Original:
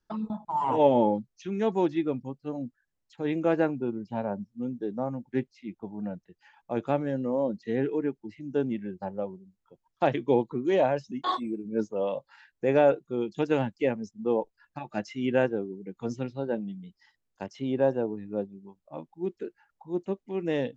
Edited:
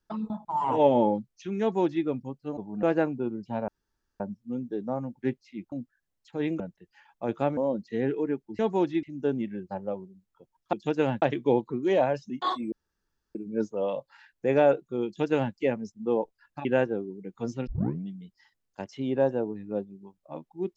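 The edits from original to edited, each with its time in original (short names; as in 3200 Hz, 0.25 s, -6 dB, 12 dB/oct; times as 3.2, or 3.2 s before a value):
1.61–2.05 copy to 8.34
2.57–3.45 swap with 5.82–6.08
4.3 insert room tone 0.52 s
7.05–7.32 cut
11.54 insert room tone 0.63 s
13.25–13.74 copy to 10.04
14.84–15.27 cut
16.29 tape start 0.38 s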